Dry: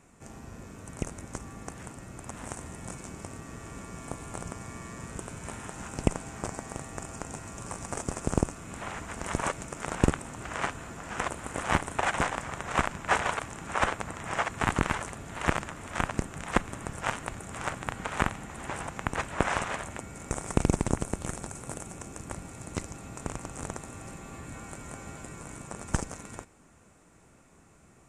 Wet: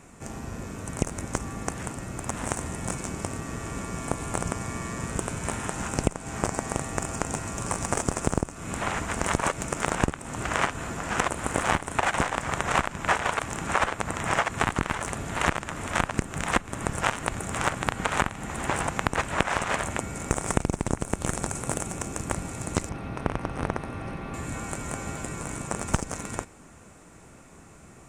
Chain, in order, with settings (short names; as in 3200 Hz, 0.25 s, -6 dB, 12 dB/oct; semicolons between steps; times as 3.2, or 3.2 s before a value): 22.89–24.34 running mean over 6 samples; in parallel at -7 dB: crossover distortion -32 dBFS; on the sum: compressor 16:1, threshold -28 dBFS, peak gain reduction 16.5 dB; gain +8.5 dB